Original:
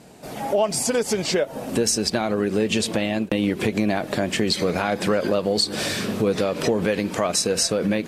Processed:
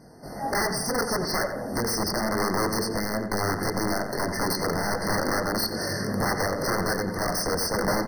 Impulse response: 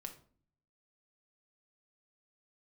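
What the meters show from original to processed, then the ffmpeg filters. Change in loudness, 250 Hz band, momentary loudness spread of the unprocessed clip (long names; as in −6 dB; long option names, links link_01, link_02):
−4.0 dB, −6.0 dB, 4 LU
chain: -filter_complex "[0:a]lowshelf=frequency=71:gain=7.5,bandreject=frequency=3400:width=18,flanger=delay=20:depth=4.6:speed=0.31,aeval=exprs='(mod(8.91*val(0)+1,2)-1)/8.91':channel_layout=same,asplit=2[link_01][link_02];[link_02]adelay=89,lowpass=frequency=2800:poles=1,volume=-7dB,asplit=2[link_03][link_04];[link_04]adelay=89,lowpass=frequency=2800:poles=1,volume=0.52,asplit=2[link_05][link_06];[link_06]adelay=89,lowpass=frequency=2800:poles=1,volume=0.52,asplit=2[link_07][link_08];[link_08]adelay=89,lowpass=frequency=2800:poles=1,volume=0.52,asplit=2[link_09][link_10];[link_10]adelay=89,lowpass=frequency=2800:poles=1,volume=0.52,asplit=2[link_11][link_12];[link_12]adelay=89,lowpass=frequency=2800:poles=1,volume=0.52[link_13];[link_03][link_05][link_07][link_09][link_11][link_13]amix=inputs=6:normalize=0[link_14];[link_01][link_14]amix=inputs=2:normalize=0,afftfilt=real='re*eq(mod(floor(b*sr/1024/2100),2),0)':imag='im*eq(mod(floor(b*sr/1024/2100),2),0)':win_size=1024:overlap=0.75"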